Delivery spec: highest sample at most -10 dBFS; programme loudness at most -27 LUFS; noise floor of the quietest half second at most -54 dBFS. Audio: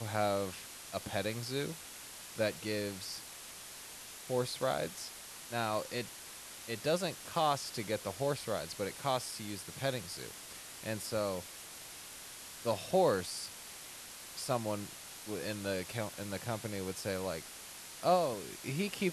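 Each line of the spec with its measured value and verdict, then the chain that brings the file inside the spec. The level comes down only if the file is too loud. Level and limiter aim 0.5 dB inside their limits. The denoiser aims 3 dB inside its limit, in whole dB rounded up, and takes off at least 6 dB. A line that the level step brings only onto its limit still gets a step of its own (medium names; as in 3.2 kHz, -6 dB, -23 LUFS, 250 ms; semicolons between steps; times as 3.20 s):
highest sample -17.5 dBFS: pass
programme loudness -37.5 LUFS: pass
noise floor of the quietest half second -49 dBFS: fail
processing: noise reduction 8 dB, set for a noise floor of -49 dBFS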